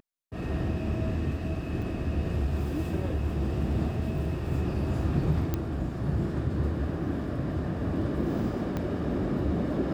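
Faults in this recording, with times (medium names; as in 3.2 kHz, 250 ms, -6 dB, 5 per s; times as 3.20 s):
1.82 s: dropout 5 ms
5.54 s: pop -15 dBFS
8.77 s: pop -19 dBFS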